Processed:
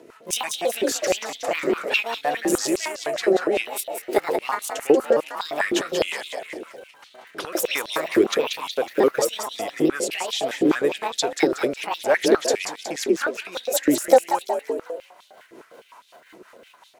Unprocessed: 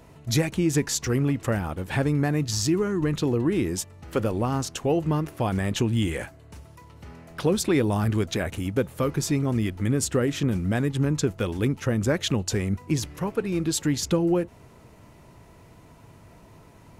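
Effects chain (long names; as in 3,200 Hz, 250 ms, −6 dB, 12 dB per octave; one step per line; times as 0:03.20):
pitch shifter gated in a rhythm +7.5 semitones, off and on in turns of 215 ms
rotating-speaker cabinet horn 5.5 Hz
echo with shifted repeats 184 ms, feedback 45%, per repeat +49 Hz, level −6.5 dB
high-pass on a step sequencer 9.8 Hz 360–3,600 Hz
level +4 dB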